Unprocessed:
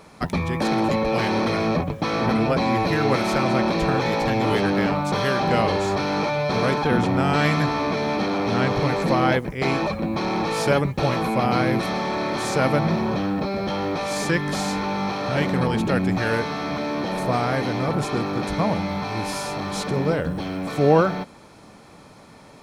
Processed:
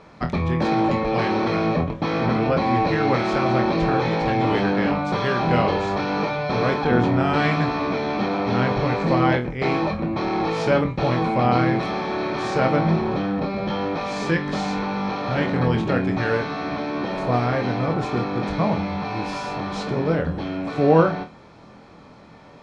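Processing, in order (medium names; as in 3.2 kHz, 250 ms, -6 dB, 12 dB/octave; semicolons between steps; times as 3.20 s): distance through air 140 m; flutter echo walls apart 4.2 m, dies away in 0.22 s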